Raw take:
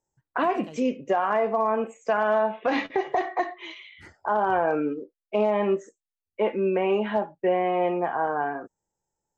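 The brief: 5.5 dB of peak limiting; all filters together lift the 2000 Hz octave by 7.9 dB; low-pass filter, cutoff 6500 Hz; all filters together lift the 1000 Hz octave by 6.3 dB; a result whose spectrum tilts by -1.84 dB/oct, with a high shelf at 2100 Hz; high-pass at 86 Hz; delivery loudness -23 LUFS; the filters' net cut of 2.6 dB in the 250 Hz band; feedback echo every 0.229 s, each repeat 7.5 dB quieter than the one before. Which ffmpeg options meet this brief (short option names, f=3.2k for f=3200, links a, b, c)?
-af "highpass=86,lowpass=6.5k,equalizer=f=250:t=o:g=-4.5,equalizer=f=1k:t=o:g=6.5,equalizer=f=2k:t=o:g=4.5,highshelf=f=2.1k:g=6.5,alimiter=limit=-11.5dB:level=0:latency=1,aecho=1:1:229|458|687|916|1145:0.422|0.177|0.0744|0.0312|0.0131"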